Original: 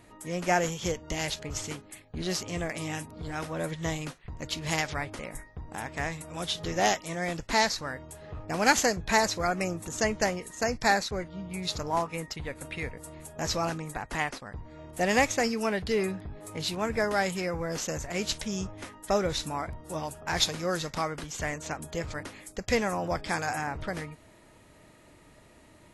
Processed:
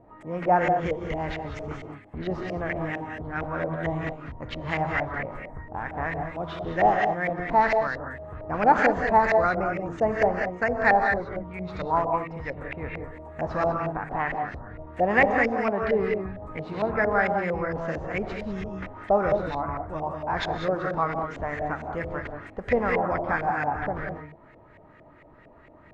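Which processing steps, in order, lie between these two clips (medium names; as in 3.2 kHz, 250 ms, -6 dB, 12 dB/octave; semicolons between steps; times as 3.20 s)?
gated-style reverb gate 220 ms rising, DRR 2.5 dB; LFO low-pass saw up 4.4 Hz 610–2200 Hz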